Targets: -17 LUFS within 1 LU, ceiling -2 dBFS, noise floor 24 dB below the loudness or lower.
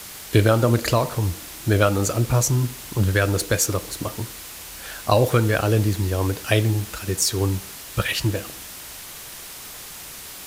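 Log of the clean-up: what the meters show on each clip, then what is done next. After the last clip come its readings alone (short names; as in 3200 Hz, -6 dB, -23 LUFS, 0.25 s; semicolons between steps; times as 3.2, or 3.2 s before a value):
noise floor -38 dBFS; noise floor target -46 dBFS; loudness -22.0 LUFS; peak -2.5 dBFS; loudness target -17.0 LUFS
-> denoiser 8 dB, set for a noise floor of -38 dBFS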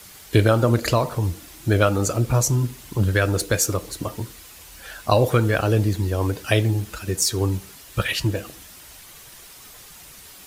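noise floor -45 dBFS; noise floor target -46 dBFS
-> denoiser 6 dB, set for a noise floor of -45 dBFS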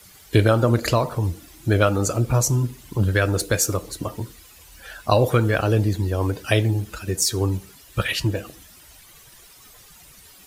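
noise floor -49 dBFS; loudness -22.0 LUFS; peak -2.5 dBFS; loudness target -17.0 LUFS
-> gain +5 dB; limiter -2 dBFS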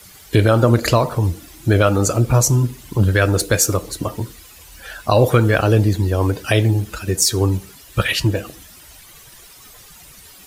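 loudness -17.5 LUFS; peak -2.0 dBFS; noise floor -44 dBFS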